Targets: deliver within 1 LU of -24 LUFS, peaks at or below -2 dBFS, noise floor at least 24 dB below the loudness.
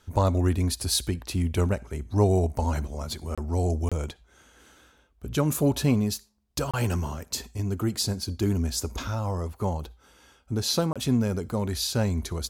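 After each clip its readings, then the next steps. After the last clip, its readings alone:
dropouts 4; longest dropout 26 ms; loudness -27.5 LUFS; peak -10.0 dBFS; loudness target -24.0 LUFS
-> interpolate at 3.35/3.89/6.71/10.93, 26 ms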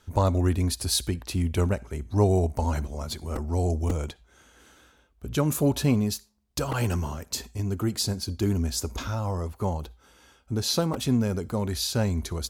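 dropouts 0; loudness -27.5 LUFS; peak -10.0 dBFS; loudness target -24.0 LUFS
-> gain +3.5 dB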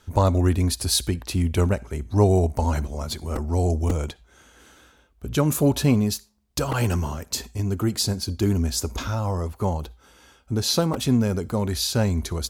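loudness -24.0 LUFS; peak -6.5 dBFS; noise floor -58 dBFS

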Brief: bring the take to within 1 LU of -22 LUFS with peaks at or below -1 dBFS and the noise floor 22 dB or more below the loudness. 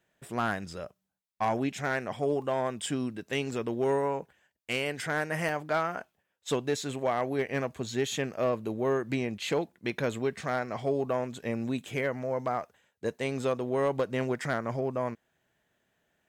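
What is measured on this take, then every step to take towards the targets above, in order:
clipped 0.3%; flat tops at -20.0 dBFS; dropouts 2; longest dropout 2.4 ms; loudness -31.5 LUFS; peak -20.0 dBFS; loudness target -22.0 LUFS
-> clip repair -20 dBFS; interpolate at 2.42/5.49, 2.4 ms; gain +9.5 dB

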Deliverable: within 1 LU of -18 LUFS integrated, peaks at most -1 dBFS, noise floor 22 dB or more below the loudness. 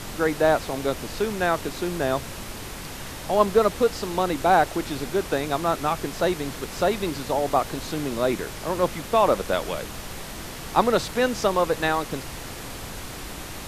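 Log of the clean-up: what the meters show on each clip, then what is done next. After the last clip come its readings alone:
noise floor -37 dBFS; noise floor target -47 dBFS; loudness -24.5 LUFS; peak -3.0 dBFS; loudness target -18.0 LUFS
-> noise print and reduce 10 dB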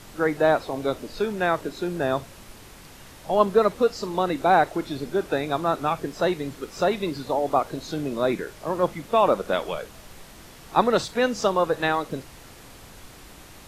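noise floor -46 dBFS; noise floor target -47 dBFS
-> noise print and reduce 6 dB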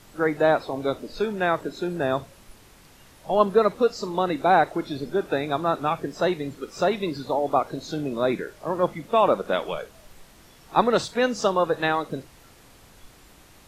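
noise floor -52 dBFS; loudness -24.5 LUFS; peak -3.0 dBFS; loudness target -18.0 LUFS
-> gain +6.5 dB; limiter -1 dBFS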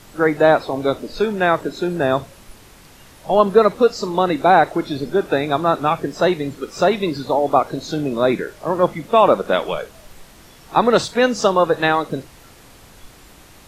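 loudness -18.0 LUFS; peak -1.0 dBFS; noise floor -46 dBFS

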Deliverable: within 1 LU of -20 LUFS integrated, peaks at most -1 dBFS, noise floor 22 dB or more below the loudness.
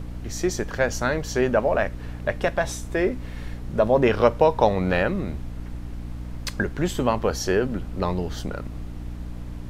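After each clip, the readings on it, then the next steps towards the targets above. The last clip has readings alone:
hum 60 Hz; harmonics up to 300 Hz; hum level -33 dBFS; noise floor -35 dBFS; noise floor target -46 dBFS; loudness -24.0 LUFS; peak -3.0 dBFS; loudness target -20.0 LUFS
-> notches 60/120/180/240/300 Hz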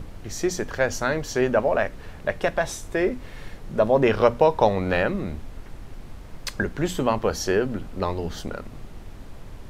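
hum none; noise floor -41 dBFS; noise floor target -46 dBFS
-> noise print and reduce 6 dB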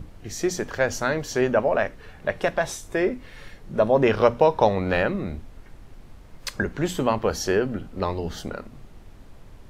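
noise floor -46 dBFS; loudness -24.0 LUFS; peak -3.5 dBFS; loudness target -20.0 LUFS
-> gain +4 dB; limiter -1 dBFS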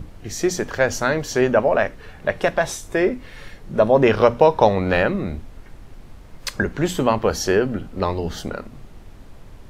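loudness -20.0 LUFS; peak -1.0 dBFS; noise floor -42 dBFS

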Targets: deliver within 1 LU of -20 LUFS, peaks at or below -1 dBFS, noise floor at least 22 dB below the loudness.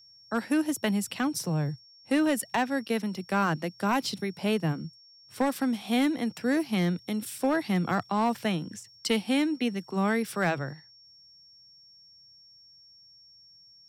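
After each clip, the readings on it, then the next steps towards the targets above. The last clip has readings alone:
clipped 0.4%; flat tops at -18.5 dBFS; steady tone 5500 Hz; tone level -53 dBFS; loudness -28.5 LUFS; peak -18.5 dBFS; loudness target -20.0 LUFS
-> clip repair -18.5 dBFS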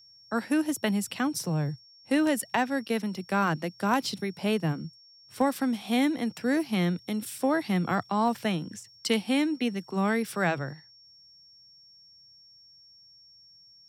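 clipped 0.0%; steady tone 5500 Hz; tone level -53 dBFS
-> notch 5500 Hz, Q 30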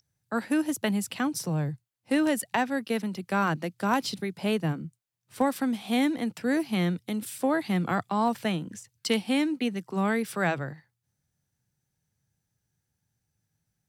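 steady tone none; loudness -28.5 LUFS; peak -10.0 dBFS; loudness target -20.0 LUFS
-> gain +8.5 dB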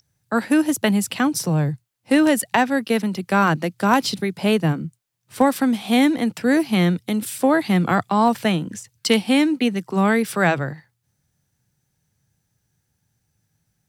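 loudness -20.0 LUFS; peak -1.5 dBFS; noise floor -73 dBFS

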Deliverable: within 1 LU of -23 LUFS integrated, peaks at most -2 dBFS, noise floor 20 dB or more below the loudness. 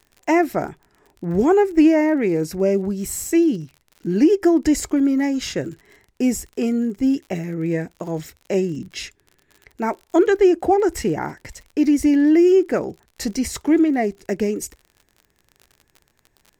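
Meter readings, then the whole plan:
ticks 46/s; loudness -19.5 LUFS; peak -6.0 dBFS; loudness target -23.0 LUFS
-> de-click; gain -3.5 dB

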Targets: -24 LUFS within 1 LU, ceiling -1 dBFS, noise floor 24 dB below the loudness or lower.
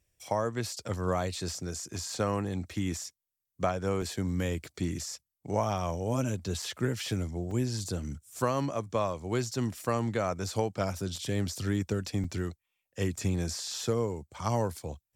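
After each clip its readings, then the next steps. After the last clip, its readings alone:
dropouts 5; longest dropout 3.8 ms; loudness -32.5 LUFS; peak -14.5 dBFS; loudness target -24.0 LUFS
-> interpolate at 4.02/6.62/7.51/11.16/12.24, 3.8 ms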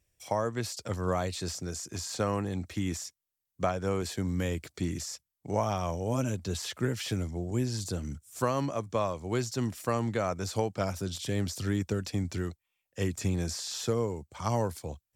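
dropouts 0; loudness -32.5 LUFS; peak -14.5 dBFS; loudness target -24.0 LUFS
-> gain +8.5 dB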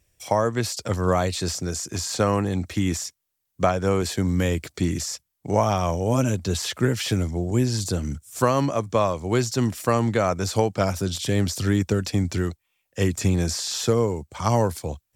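loudness -24.0 LUFS; peak -6.0 dBFS; noise floor -77 dBFS

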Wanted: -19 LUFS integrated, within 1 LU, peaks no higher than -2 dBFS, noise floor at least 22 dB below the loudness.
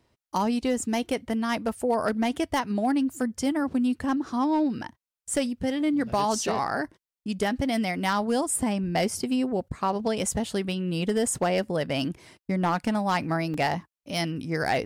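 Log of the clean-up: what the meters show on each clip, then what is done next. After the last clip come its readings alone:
clipped 0.4%; flat tops at -17.0 dBFS; dropouts 1; longest dropout 2.9 ms; loudness -27.0 LUFS; peak -17.0 dBFS; loudness target -19.0 LUFS
-> clip repair -17 dBFS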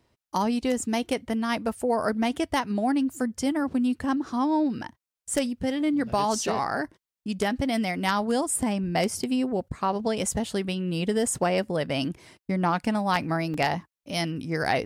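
clipped 0.0%; dropouts 1; longest dropout 2.9 ms
-> interpolate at 13.54, 2.9 ms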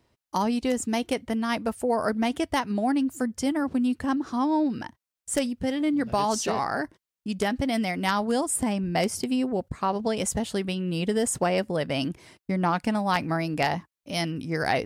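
dropouts 0; loudness -27.0 LUFS; peak -8.0 dBFS; loudness target -19.0 LUFS
-> gain +8 dB; limiter -2 dBFS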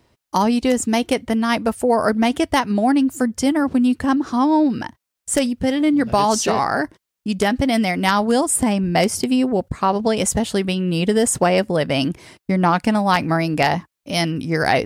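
loudness -19.0 LUFS; peak -2.0 dBFS; noise floor -82 dBFS

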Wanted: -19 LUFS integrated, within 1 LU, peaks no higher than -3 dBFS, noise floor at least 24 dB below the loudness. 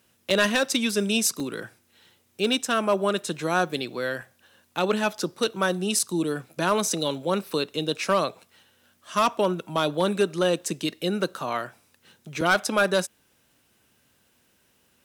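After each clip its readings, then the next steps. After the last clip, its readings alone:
clipped 0.3%; flat tops at -13.5 dBFS; dropouts 5; longest dropout 3.5 ms; loudness -25.5 LUFS; peak -13.5 dBFS; loudness target -19.0 LUFS
-> clip repair -13.5 dBFS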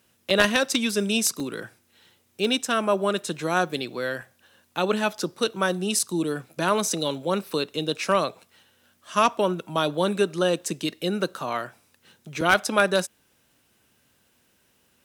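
clipped 0.0%; dropouts 5; longest dropout 3.5 ms
-> interpolate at 0.3/1.4/4.22/5.99/12.41, 3.5 ms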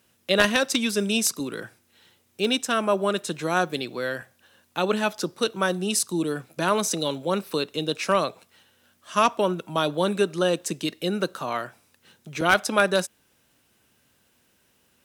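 dropouts 0; loudness -25.0 LUFS; peak -4.5 dBFS; loudness target -19.0 LUFS
-> gain +6 dB; limiter -3 dBFS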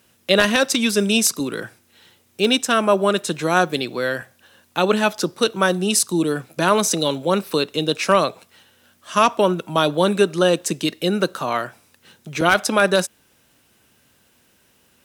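loudness -19.5 LUFS; peak -3.0 dBFS; noise floor -60 dBFS

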